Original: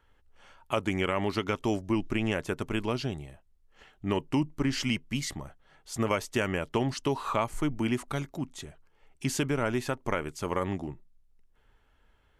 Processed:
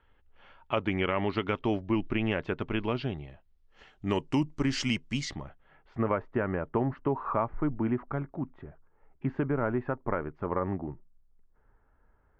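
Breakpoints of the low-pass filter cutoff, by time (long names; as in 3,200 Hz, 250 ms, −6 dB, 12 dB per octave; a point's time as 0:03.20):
low-pass filter 24 dB per octave
0:03.21 3,500 Hz
0:04.08 7,800 Hz
0:05.17 7,800 Hz
0:05.44 3,600 Hz
0:06.18 1,600 Hz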